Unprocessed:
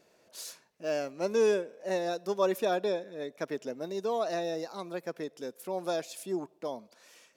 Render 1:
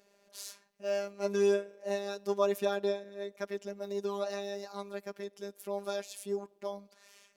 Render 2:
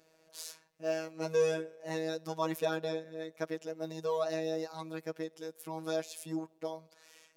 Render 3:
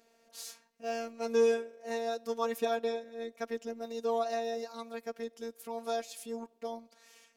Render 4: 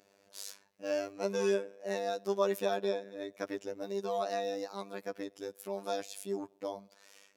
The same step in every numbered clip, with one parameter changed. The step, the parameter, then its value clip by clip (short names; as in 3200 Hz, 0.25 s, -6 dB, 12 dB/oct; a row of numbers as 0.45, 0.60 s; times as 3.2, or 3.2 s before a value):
robotiser, frequency: 200, 160, 230, 99 Hz